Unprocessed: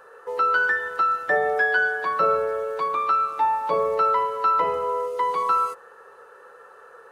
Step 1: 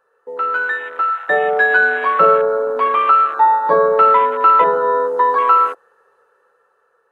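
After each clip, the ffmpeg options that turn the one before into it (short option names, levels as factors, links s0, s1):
-af "afwtdn=0.0355,dynaudnorm=f=320:g=9:m=3.76,volume=1.12"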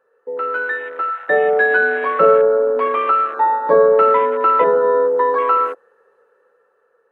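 -af "equalizer=f=125:t=o:w=1:g=4,equalizer=f=250:t=o:w=1:g=9,equalizer=f=500:t=o:w=1:g=9,equalizer=f=2000:t=o:w=1:g=6,volume=0.422"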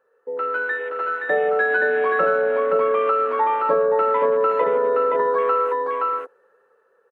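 -af "aecho=1:1:522:0.596,acompressor=threshold=0.2:ratio=3,volume=0.75"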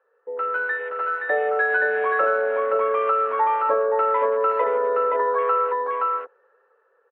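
-af "highpass=470,lowpass=2800"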